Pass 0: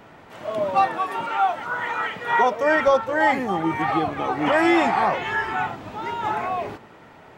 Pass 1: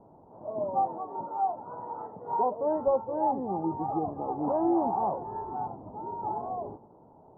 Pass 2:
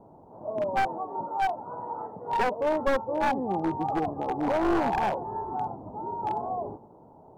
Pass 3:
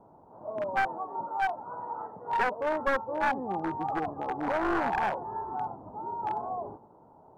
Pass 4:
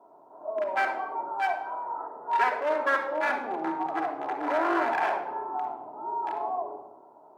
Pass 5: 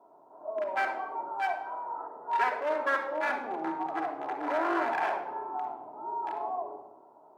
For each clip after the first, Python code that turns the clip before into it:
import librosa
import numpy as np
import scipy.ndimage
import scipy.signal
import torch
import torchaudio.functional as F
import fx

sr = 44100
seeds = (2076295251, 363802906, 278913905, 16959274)

y1 = scipy.signal.sosfilt(scipy.signal.ellip(4, 1.0, 60, 930.0, 'lowpass', fs=sr, output='sos'), x)
y1 = y1 * librosa.db_to_amplitude(-6.5)
y2 = np.minimum(y1, 2.0 * 10.0 ** (-25.0 / 20.0) - y1)
y2 = y2 * librosa.db_to_amplitude(3.0)
y3 = fx.peak_eq(y2, sr, hz=1500.0, db=9.5, octaves=1.4)
y3 = y3 * librosa.db_to_amplitude(-6.0)
y4 = scipy.signal.sosfilt(scipy.signal.butter(2, 450.0, 'highpass', fs=sr, output='sos'), y3)
y4 = fx.room_shoebox(y4, sr, seeds[0], volume_m3=3800.0, walls='furnished', distance_m=3.0)
y4 = y4 * librosa.db_to_amplitude(1.0)
y5 = fx.comb_fb(y4, sr, f0_hz=160.0, decay_s=2.0, harmonics='all', damping=0.0, mix_pct=30)